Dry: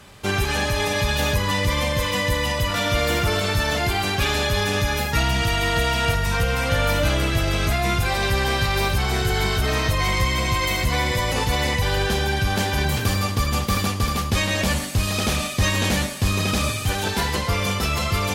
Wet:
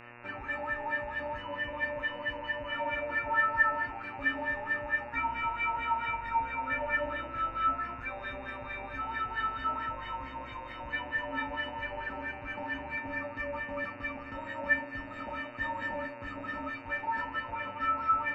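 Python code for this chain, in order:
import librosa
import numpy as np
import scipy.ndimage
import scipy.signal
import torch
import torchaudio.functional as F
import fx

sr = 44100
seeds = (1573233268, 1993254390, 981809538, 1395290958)

y = fx.filter_lfo_lowpass(x, sr, shape='sine', hz=4.5, low_hz=760.0, high_hz=1800.0, q=5.8)
y = fx.stiff_resonator(y, sr, f0_hz=270.0, decay_s=0.54, stiffness=0.03)
y = fx.dmg_buzz(y, sr, base_hz=120.0, harmonics=23, level_db=-54.0, tilt_db=-1, odd_only=False)
y = y * librosa.db_to_amplitude(2.5)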